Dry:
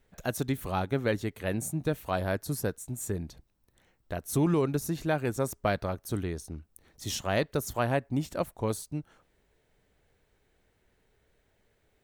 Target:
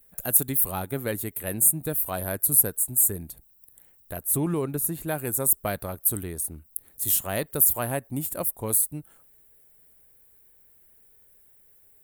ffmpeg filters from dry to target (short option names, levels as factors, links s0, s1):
-filter_complex "[0:a]asettb=1/sr,asplit=3[s0][s1][s2];[s0]atrim=end=4.234[s3];[s1]atrim=start=4.23:end=5.08,asetpts=PTS-STARTPTS,afade=t=in:d=0.004:c=qsin,afade=t=out:st=0.846:d=0.004:c=qsin,aemphasis=mode=reproduction:type=cd[s4];[s2]atrim=start=5.076[s5];[s3][s4]acrossfade=d=0.004:c1=hsin:c2=qsin[s6];[s6][s5]acrossfade=d=0.004:c1=qsin:c2=hsin,aexciter=amount=10:drive=9:freq=8500,volume=0.841"